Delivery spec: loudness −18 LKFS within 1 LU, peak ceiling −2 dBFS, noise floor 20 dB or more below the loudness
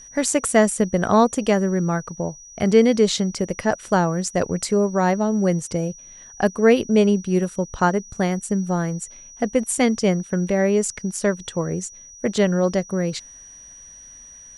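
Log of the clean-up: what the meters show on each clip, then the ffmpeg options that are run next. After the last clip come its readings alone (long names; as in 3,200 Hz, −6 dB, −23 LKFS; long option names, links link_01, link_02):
interfering tone 5,800 Hz; level of the tone −41 dBFS; integrated loudness −21.0 LKFS; sample peak −2.0 dBFS; target loudness −18.0 LKFS
→ -af "bandreject=frequency=5800:width=30"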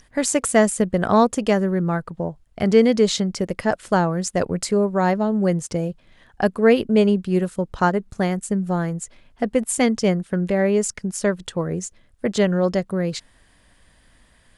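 interfering tone none found; integrated loudness −21.0 LKFS; sample peak −2.0 dBFS; target loudness −18.0 LKFS
→ -af "volume=3dB,alimiter=limit=-2dB:level=0:latency=1"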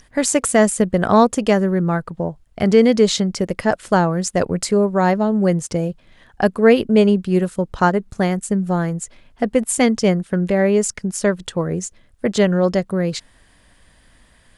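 integrated loudness −18.0 LKFS; sample peak −2.0 dBFS; background noise floor −54 dBFS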